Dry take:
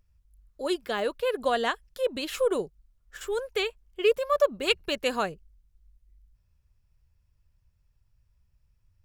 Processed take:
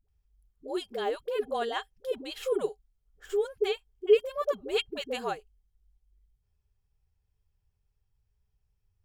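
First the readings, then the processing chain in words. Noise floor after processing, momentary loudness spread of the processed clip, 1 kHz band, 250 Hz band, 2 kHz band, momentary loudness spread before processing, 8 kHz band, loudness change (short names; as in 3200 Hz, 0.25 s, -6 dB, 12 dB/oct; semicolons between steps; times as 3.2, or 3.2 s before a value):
-77 dBFS, 12 LU, -4.5 dB, -5.0 dB, -7.5 dB, 8 LU, n/a, -3.0 dB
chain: small resonant body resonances 420/780/3200 Hz, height 13 dB, ringing for 80 ms; dispersion highs, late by 87 ms, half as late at 370 Hz; gain -7.5 dB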